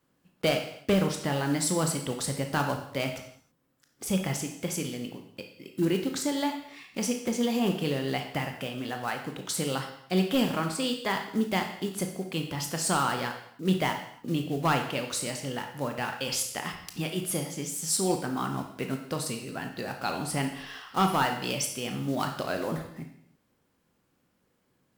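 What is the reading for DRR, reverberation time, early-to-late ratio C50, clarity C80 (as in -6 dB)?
4.0 dB, not exponential, 7.0 dB, 10.0 dB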